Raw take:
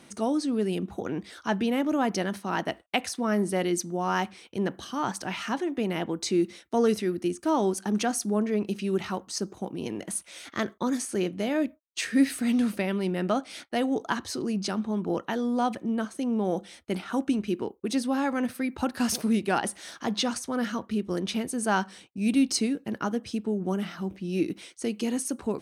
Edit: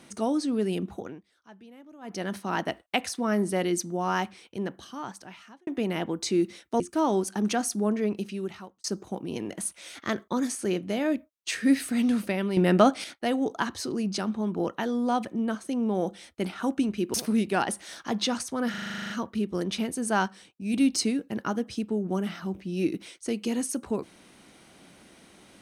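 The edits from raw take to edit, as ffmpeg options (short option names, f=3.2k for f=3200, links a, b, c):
-filter_complex "[0:a]asplit=21[a][b][c][d][e][f][g][h][i][j][k][l][m][n][o][p][q][r][s][t][u];[a]atrim=end=1.22,asetpts=PTS-STARTPTS,afade=t=out:st=0.88:d=0.34:silence=0.0668344[v];[b]atrim=start=1.22:end=2.01,asetpts=PTS-STARTPTS,volume=-23.5dB[w];[c]atrim=start=2.01:end=5.67,asetpts=PTS-STARTPTS,afade=t=in:d=0.34:silence=0.0668344,afade=t=out:st=2.07:d=1.59[x];[d]atrim=start=5.67:end=6.802,asetpts=PTS-STARTPTS,afade=t=in:d=0.004:c=hsin[y];[e]atrim=start=7.298:end=9.34,asetpts=PTS-STARTPTS,afade=t=out:st=1.232:d=0.81[z];[f]atrim=start=9.34:end=13.072,asetpts=PTS-STARTPTS,afade=t=in:d=0.004:c=hsin[aa];[g]atrim=start=13.068:end=13.542,asetpts=PTS-STARTPTS,volume=7.5dB[ab];[h]atrim=start=13.538:end=17.642[ac];[i]atrim=start=19.098:end=20.702[ad];[j]atrim=start=20.658:end=20.702[ae];[k]atrim=start=20.658:end=20.702[af];[l]atrim=start=20.658:end=20.702[ag];[m]atrim=start=20.658:end=20.702[ah];[n]atrim=start=20.658:end=20.702[ai];[o]atrim=start=20.658:end=20.702[aj];[p]atrim=start=20.658:end=20.702[ak];[q]atrim=start=20.658:end=20.702[al];[r]atrim=start=20.658:end=20.702[am];[s]atrim=start=20.658:end=21.822[an];[t]atrim=start=21.818:end=22.302,asetpts=PTS-STARTPTS,volume=-3.5dB[ao];[u]atrim=start=22.298[ap];[v][w][x][y]concat=n=4:v=0:a=1[aq];[z][aa]concat=n=2:v=0:a=1[ar];[aq][ar]acrossfade=d=0.004:c1=hsin:c2=hsin[as];[as][ab]acrossfade=d=0.004:c1=hsin:c2=hsin[at];[at][ac]acrossfade=d=0.004:c1=hsin:c2=hsin[au];[au][ad]acrossfade=d=0.004:c1=hsin:c2=hsin[av];[av][ae]acrossfade=d=0.004:c1=hsin:c2=hsin[aw];[aw][af]acrossfade=d=0.004:c1=hsin:c2=hsin[ax];[ax][ag]acrossfade=d=0.004:c1=hsin:c2=hsin[ay];[ay][ah]acrossfade=d=0.004:c1=hsin:c2=hsin[az];[az][ai]acrossfade=d=0.004:c1=hsin:c2=hsin[ba];[ba][aj]acrossfade=d=0.004:c1=hsin:c2=hsin[bb];[bb][ak]acrossfade=d=0.004:c1=hsin:c2=hsin[bc];[bc][al]acrossfade=d=0.004:c1=hsin:c2=hsin[bd];[bd][am]acrossfade=d=0.004:c1=hsin:c2=hsin[be];[be][an]acrossfade=d=0.004:c1=hsin:c2=hsin[bf];[bf][ao]acrossfade=d=0.004:c1=hsin:c2=hsin[bg];[bg][ap]acrossfade=d=0.004:c1=hsin:c2=hsin"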